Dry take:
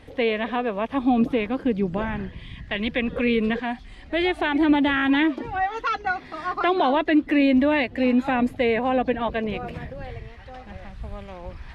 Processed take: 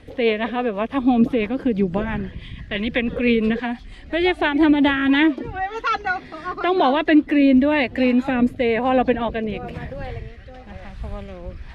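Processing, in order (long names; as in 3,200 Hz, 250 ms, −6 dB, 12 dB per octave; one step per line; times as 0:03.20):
rotating-speaker cabinet horn 6 Hz, later 1 Hz, at 0:04.45
level +5 dB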